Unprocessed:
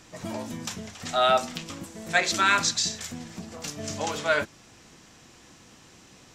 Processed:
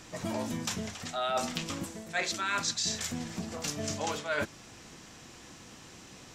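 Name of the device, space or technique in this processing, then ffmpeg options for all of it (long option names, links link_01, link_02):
compression on the reversed sound: -af "areverse,acompressor=threshold=-31dB:ratio=6,areverse,volume=2dB"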